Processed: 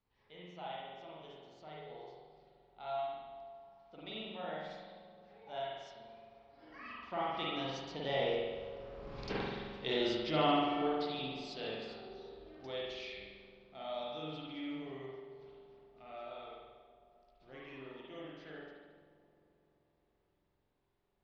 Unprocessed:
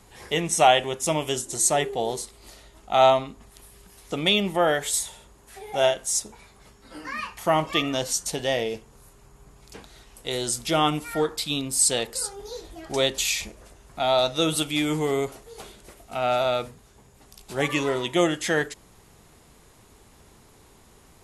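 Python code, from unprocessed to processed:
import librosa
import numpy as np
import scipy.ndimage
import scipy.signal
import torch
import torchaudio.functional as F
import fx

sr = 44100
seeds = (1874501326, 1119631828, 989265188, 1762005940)

y = fx.doppler_pass(x, sr, speed_mps=16, closest_m=2.5, pass_at_s=9.23)
y = scipy.signal.sosfilt(scipy.signal.butter(8, 5100.0, 'lowpass', fs=sr, output='sos'), y)
y = fx.wow_flutter(y, sr, seeds[0], rate_hz=2.1, depth_cents=15.0)
y = fx.echo_wet_lowpass(y, sr, ms=130, feedback_pct=81, hz=780.0, wet_db=-13.5)
y = fx.rev_spring(y, sr, rt60_s=1.3, pass_ms=(45,), chirp_ms=30, drr_db=-5.5)
y = F.gain(torch.from_numpy(y), 3.0).numpy()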